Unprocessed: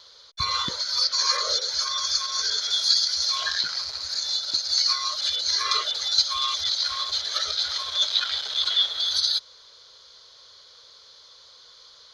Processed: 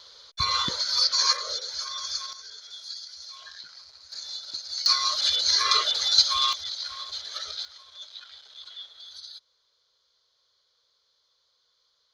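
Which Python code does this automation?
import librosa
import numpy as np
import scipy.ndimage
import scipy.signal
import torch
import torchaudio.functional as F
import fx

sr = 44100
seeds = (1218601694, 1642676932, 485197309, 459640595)

y = fx.gain(x, sr, db=fx.steps((0.0, 0.5), (1.33, -7.0), (2.33, -18.0), (4.12, -10.0), (4.86, 2.0), (6.53, -8.5), (7.65, -20.0)))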